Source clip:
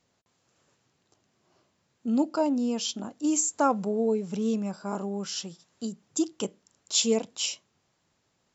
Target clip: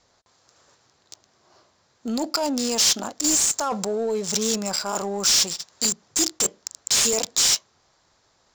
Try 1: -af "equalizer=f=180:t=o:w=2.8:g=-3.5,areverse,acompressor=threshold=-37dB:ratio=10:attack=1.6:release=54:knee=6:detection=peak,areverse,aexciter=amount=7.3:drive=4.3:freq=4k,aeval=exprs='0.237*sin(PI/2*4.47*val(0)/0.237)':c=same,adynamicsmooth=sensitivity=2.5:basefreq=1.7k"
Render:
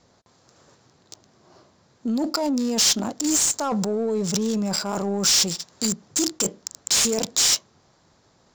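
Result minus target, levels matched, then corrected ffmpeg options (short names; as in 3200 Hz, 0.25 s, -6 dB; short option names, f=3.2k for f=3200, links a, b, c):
250 Hz band +5.0 dB
-af "equalizer=f=180:t=o:w=2.8:g=-15.5,areverse,acompressor=threshold=-37dB:ratio=10:attack=1.6:release=54:knee=6:detection=peak,areverse,aexciter=amount=7.3:drive=4.3:freq=4k,aeval=exprs='0.237*sin(PI/2*4.47*val(0)/0.237)':c=same,adynamicsmooth=sensitivity=2.5:basefreq=1.7k"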